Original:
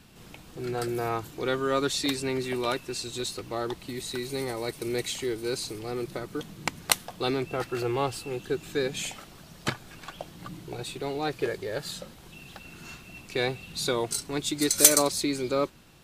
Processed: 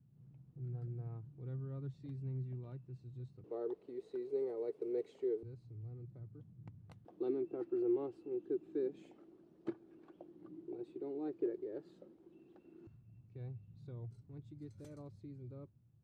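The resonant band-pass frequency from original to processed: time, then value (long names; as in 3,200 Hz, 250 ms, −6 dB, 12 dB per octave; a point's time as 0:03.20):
resonant band-pass, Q 6.7
130 Hz
from 0:03.44 430 Hz
from 0:05.43 110 Hz
from 0:07.05 340 Hz
from 0:12.87 110 Hz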